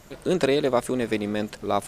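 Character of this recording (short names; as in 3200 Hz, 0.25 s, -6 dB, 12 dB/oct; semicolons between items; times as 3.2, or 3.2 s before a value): noise floor -48 dBFS; spectral tilt -4.5 dB/oct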